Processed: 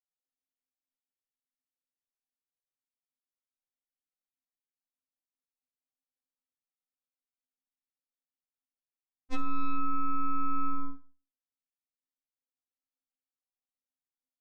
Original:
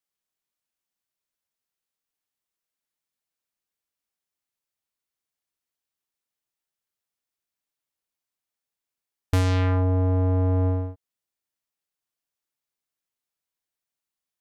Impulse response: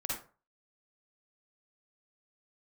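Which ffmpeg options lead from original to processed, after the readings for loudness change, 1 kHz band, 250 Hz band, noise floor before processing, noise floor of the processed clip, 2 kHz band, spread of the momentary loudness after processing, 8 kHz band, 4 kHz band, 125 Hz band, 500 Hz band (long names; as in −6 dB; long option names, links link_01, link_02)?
−11.5 dB, +1.5 dB, −9.5 dB, below −85 dBFS, below −85 dBFS, −11.5 dB, 8 LU, can't be measured, −17.0 dB, below −25 dB, −28.5 dB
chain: -filter_complex "[0:a]lowpass=1100,equalizer=frequency=250:width=2.5:gain=12,aecho=1:1:6.2:0.64,acompressor=threshold=-22dB:ratio=16,aphaser=in_gain=1:out_gain=1:delay=1.4:decay=0.25:speed=0.15:type=sinusoidal,aeval=exprs='0.141*(cos(1*acos(clip(val(0)/0.141,-1,1)))-cos(1*PI/2))+0.0562*(cos(6*acos(clip(val(0)/0.141,-1,1)))-cos(6*PI/2))+0.0126*(cos(7*acos(clip(val(0)/0.141,-1,1)))-cos(7*PI/2))':channel_layout=same,asplit=2[link_01][link_02];[link_02]adelay=120,highpass=300,lowpass=3400,asoftclip=type=hard:threshold=-21.5dB,volume=-24dB[link_03];[link_01][link_03]amix=inputs=2:normalize=0,asplit=2[link_04][link_05];[1:a]atrim=start_sample=2205[link_06];[link_05][link_06]afir=irnorm=-1:irlink=0,volume=-12dB[link_07];[link_04][link_07]amix=inputs=2:normalize=0,afftfilt=real='re*3.46*eq(mod(b,12),0)':imag='im*3.46*eq(mod(b,12),0)':win_size=2048:overlap=0.75,volume=-6.5dB"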